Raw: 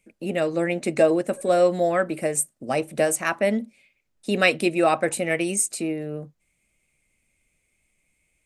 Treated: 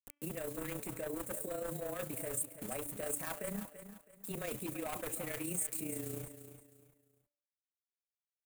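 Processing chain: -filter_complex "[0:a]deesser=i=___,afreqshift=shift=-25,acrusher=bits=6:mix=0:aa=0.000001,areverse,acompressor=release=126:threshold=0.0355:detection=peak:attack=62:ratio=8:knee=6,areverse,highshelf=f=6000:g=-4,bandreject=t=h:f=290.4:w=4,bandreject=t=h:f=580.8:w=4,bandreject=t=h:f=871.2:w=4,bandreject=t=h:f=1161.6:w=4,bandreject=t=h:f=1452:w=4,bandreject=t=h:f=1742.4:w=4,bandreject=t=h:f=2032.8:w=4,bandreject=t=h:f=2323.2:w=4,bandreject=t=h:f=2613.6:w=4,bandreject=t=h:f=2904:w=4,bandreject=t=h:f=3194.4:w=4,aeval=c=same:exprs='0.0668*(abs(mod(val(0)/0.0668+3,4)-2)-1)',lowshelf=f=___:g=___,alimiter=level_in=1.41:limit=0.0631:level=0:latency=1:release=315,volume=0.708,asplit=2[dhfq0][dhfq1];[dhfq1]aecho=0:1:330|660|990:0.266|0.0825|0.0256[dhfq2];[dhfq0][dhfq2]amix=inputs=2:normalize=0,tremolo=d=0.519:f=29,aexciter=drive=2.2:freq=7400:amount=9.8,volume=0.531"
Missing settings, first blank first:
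0.8, 60, 7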